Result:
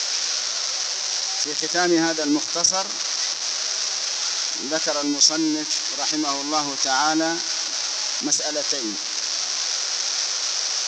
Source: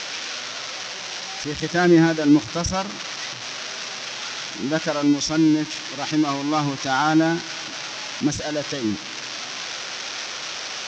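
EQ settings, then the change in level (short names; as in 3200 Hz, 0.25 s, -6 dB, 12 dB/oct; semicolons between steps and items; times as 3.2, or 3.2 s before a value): HPF 400 Hz 12 dB/oct; resonant high shelf 4000 Hz +9 dB, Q 1.5; 0.0 dB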